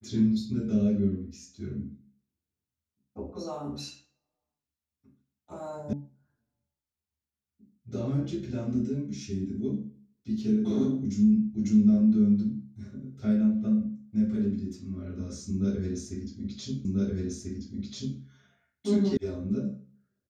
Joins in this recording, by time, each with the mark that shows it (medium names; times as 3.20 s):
5.93 s: sound stops dead
16.85 s: repeat of the last 1.34 s
19.17 s: sound stops dead